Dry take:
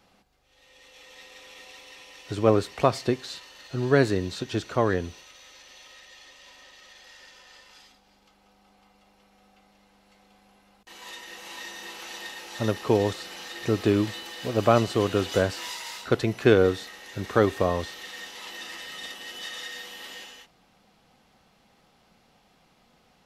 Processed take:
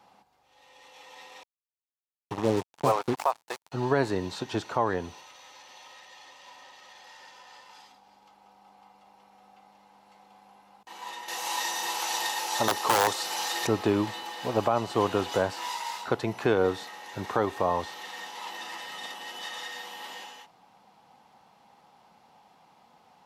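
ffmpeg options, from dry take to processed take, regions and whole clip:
-filter_complex "[0:a]asettb=1/sr,asplit=3[a][b][c];[a]atrim=end=1.434[d];[b]atrim=start=1.43:end=3.72,asetpts=PTS-STARTPTS,afade=t=in:d=0.004:c=qsin,afade=t=out:st=2.286:d=0.004:c=qsin,highpass=f=46:p=1,acrossover=split=510|4400[e][f][g];[g]adelay=240[h];[f]adelay=420[i];[e][i][h]amix=inputs=3:normalize=0,atrim=end_sample=100989,acrusher=bits=4:mix=0:aa=0.5[j];[c]atrim=start=3.716[k];[d][j]acrossfade=d=0.004:c1=hsin:c2=qsin[l];[l][k]acrossfade=d=0.004:c1=qsin:c2=hsin,asettb=1/sr,asplit=3[m][n][o];[m]atrim=end=11.284[p];[n]atrim=start=11.28:end=13.67,asetpts=PTS-STARTPTS,afade=t=in:d=0.004:c=qsin,afade=t=out:st=2.386:d=0.004:c=qsin,bass=f=250:g=-9,treble=f=4k:g=10,acontrast=38,aeval=exprs='(mod(4.22*val(0)+1,2)-1)/4.22':c=same[q];[o]atrim=start=13.666[r];[p][q]acrossfade=d=0.004:c1=hsin:c2=qsin[s];[s][r]acrossfade=d=0.004:c1=qsin:c2=hsin,highpass=100,equalizer=f=890:t=o:w=0.66:g=14,alimiter=limit=-10dB:level=0:latency=1:release=305,volume=-2.5dB"

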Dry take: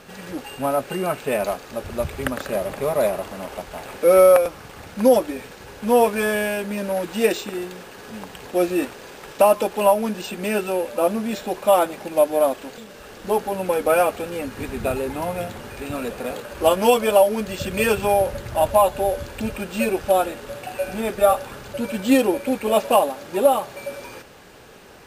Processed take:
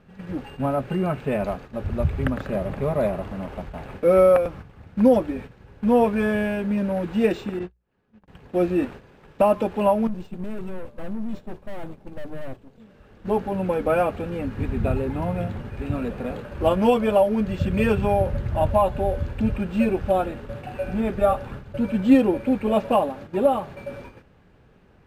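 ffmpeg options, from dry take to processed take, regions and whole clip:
-filter_complex "[0:a]asettb=1/sr,asplit=3[a][b][c];[a]atrim=end=7.594[d];[b]atrim=start=7.59:end=8.28,asetpts=PTS-STARTPTS,afade=t=in:d=0.004:c=qsin,afade=t=out:st=0.686:d=0.004:c=qsin,agate=range=-53dB:threshold=-31dB:ratio=16:release=100:detection=peak,lowpass=6.3k,acompressor=mode=upward:threshold=-33dB:ratio=2.5:attack=3.2:release=140:knee=2.83:detection=peak[e];[c]atrim=start=8.276[f];[d][e]acrossfade=d=0.004:c1=hsin:c2=qsin[g];[g][f]acrossfade=d=0.004:c1=qsin:c2=hsin,asettb=1/sr,asplit=3[h][i][j];[h]atrim=end=10.074[k];[i]atrim=start=10.07:end=12.8,asetpts=PTS-STARTPTS,afade=t=in:d=0.004:c=qsin,afade=t=out:st=2.726:d=0.004:c=qsin,highpass=44,equalizer=f=1.8k:w=0.62:g=-8,aeval=exprs='(tanh(39.8*val(0)+0.65)-tanh(0.65))/39.8':c=same[l];[j]atrim=start=12.796[m];[k][l]acrossfade=d=0.004:c1=hsin:c2=qsin[n];[n][m]acrossfade=d=0.004:c1=qsin:c2=hsin,agate=range=-10dB:threshold=-36dB:ratio=16:detection=peak,bass=f=250:g=14,treble=f=4k:g=-15,bandreject=f=60:t=h:w=6,bandreject=f=120:t=h:w=6,volume=-4dB"

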